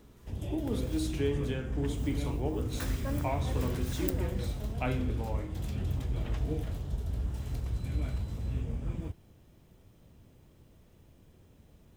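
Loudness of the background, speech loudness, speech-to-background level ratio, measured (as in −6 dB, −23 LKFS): −35.5 LKFS, −37.0 LKFS, −1.5 dB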